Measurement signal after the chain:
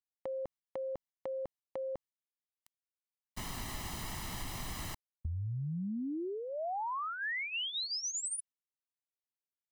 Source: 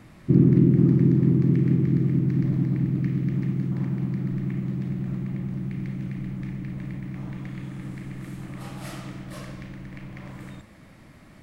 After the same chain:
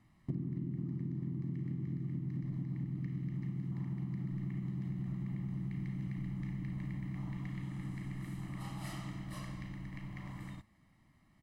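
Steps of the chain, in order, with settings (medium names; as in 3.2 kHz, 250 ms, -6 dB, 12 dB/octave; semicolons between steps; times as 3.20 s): gate -40 dBFS, range -12 dB; comb 1 ms, depth 63%; compression 16:1, threshold -26 dBFS; trim -8.5 dB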